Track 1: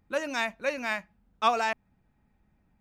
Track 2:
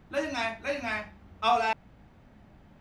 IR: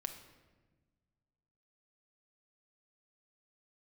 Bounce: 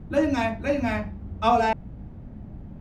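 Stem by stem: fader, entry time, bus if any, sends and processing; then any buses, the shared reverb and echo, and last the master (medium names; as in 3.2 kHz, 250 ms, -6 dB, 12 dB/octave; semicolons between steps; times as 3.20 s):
-4.0 dB, 0.00 s, no send, none
+2.0 dB, 0.00 s, polarity flipped, no send, tilt shelf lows +7.5 dB, about 900 Hz; bass shelf 350 Hz +8 dB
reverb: none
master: none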